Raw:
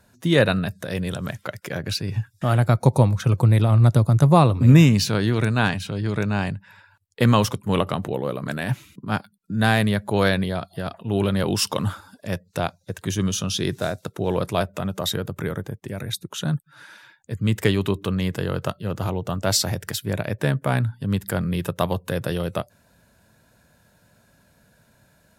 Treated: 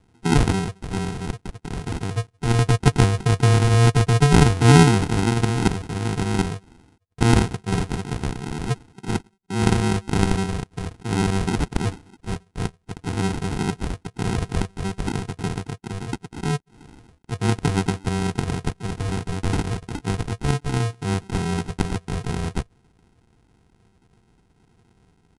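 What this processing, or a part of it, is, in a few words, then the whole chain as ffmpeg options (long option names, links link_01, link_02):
crushed at another speed: -af "asetrate=88200,aresample=44100,acrusher=samples=38:mix=1:aa=0.000001,asetrate=22050,aresample=44100"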